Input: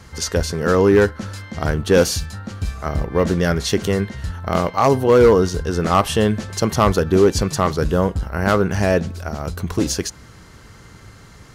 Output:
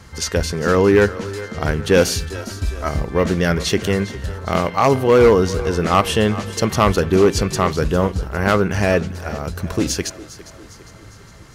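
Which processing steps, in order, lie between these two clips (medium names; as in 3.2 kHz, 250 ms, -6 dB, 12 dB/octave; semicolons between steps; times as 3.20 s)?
two-band feedback delay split 300 Hz, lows 86 ms, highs 405 ms, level -15.5 dB; dynamic bell 2.4 kHz, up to +5 dB, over -39 dBFS, Q 1.6; 2.32–2.89 s: comb 3.1 ms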